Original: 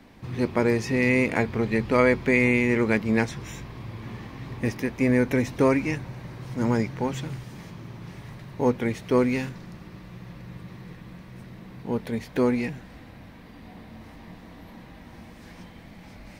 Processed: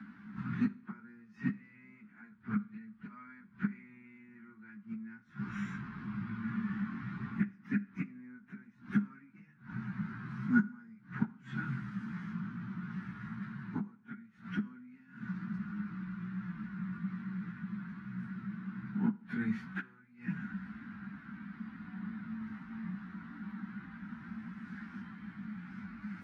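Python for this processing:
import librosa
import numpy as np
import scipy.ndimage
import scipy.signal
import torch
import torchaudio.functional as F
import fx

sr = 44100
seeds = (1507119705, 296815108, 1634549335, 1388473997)

y = fx.gate_flip(x, sr, shuts_db=-17.0, range_db=-30)
y = fx.double_bandpass(y, sr, hz=540.0, octaves=2.8)
y = fx.stretch_vocoder_free(y, sr, factor=1.6)
y = fx.rev_schroeder(y, sr, rt60_s=0.55, comb_ms=32, drr_db=18.5)
y = y * 10.0 ** (12.5 / 20.0)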